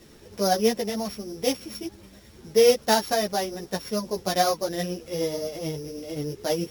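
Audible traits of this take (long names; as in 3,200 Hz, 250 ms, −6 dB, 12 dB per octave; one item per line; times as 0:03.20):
a buzz of ramps at a fixed pitch in blocks of 8 samples
tremolo triangle 9.4 Hz, depth 45%
a quantiser's noise floor 10 bits, dither none
a shimmering, thickened sound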